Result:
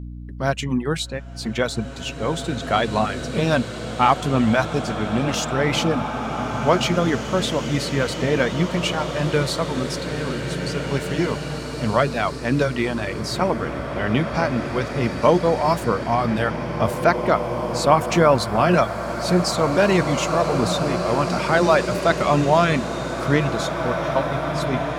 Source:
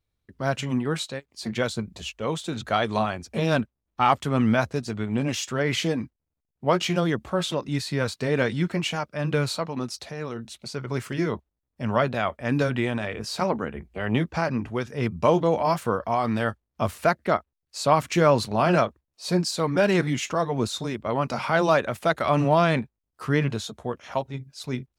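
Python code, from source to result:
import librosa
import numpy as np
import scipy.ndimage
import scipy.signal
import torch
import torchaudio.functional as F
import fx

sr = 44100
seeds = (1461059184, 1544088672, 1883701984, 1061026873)

y = fx.add_hum(x, sr, base_hz=60, snr_db=11)
y = fx.dereverb_blind(y, sr, rt60_s=0.65)
y = fx.rev_bloom(y, sr, seeds[0], attack_ms=2410, drr_db=5.0)
y = y * 10.0 ** (4.0 / 20.0)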